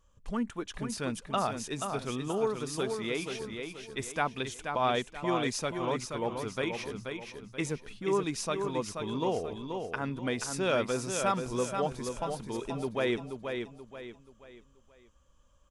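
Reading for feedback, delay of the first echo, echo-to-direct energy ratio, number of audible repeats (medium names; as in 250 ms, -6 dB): 37%, 481 ms, -5.5 dB, 4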